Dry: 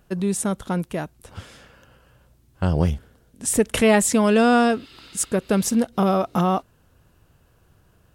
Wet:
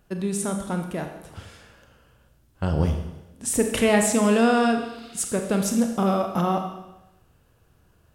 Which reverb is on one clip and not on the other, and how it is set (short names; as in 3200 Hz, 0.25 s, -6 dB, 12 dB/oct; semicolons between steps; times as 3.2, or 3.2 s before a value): Schroeder reverb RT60 0.95 s, combs from 27 ms, DRR 4.5 dB; gain -3.5 dB